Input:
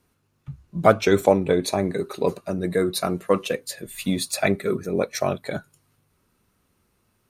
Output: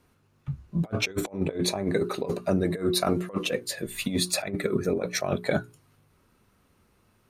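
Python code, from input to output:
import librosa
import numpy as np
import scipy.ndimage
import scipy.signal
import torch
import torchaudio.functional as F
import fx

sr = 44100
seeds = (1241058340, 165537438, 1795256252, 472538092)

y = fx.high_shelf(x, sr, hz=4800.0, db=-6.5)
y = fx.hum_notches(y, sr, base_hz=60, count=7)
y = fx.over_compress(y, sr, threshold_db=-26.0, ratio=-0.5)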